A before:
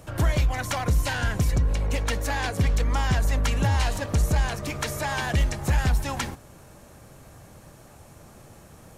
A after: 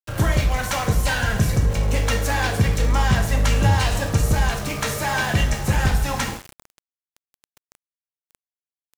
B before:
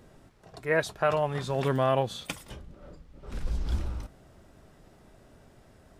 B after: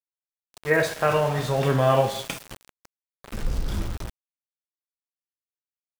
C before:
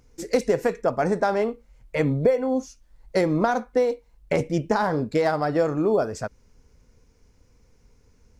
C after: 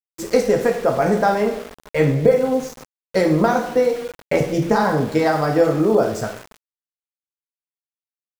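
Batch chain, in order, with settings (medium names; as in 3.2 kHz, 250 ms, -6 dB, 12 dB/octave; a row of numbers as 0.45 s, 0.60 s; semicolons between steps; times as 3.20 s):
two-slope reverb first 0.57 s, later 2.3 s, from -18 dB, DRR 1.5 dB; small samples zeroed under -35 dBFS; trim +3 dB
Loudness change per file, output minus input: +4.5 LU, +5.5 LU, +5.0 LU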